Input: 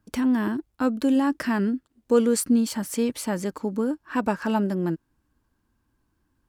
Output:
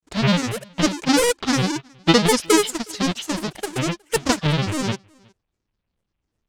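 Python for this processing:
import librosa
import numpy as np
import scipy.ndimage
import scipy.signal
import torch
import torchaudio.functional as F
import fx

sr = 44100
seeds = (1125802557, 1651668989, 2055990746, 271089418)

p1 = fx.halfwave_hold(x, sr)
p2 = scipy.signal.sosfilt(scipy.signal.butter(2, 6500.0, 'lowpass', fs=sr, output='sos'), p1)
p3 = fx.peak_eq(p2, sr, hz=5000.0, db=11.5, octaves=1.0)
p4 = fx.granulator(p3, sr, seeds[0], grain_ms=100.0, per_s=20.0, spray_ms=34.0, spread_st=12)
p5 = p4 + fx.echo_single(p4, sr, ms=365, db=-19.5, dry=0)
p6 = fx.upward_expand(p5, sr, threshold_db=-41.0, expansion=1.5)
y = F.gain(torch.from_numpy(p6), 2.5).numpy()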